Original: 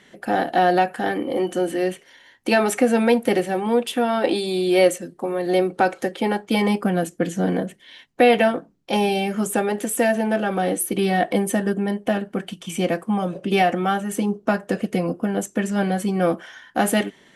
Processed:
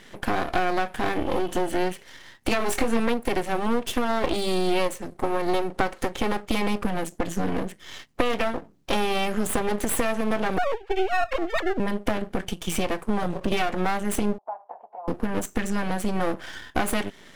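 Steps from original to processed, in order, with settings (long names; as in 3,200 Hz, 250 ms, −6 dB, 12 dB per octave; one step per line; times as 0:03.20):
0:10.58–0:11.80: three sine waves on the formant tracks
downward compressor 6 to 1, threshold −25 dBFS, peak gain reduction 13.5 dB
half-wave rectification
0:02.58–0:03.00: double-tracking delay 22 ms −6 dB
0:14.38–0:15.08: flat-topped band-pass 810 Hz, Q 3
level +7.5 dB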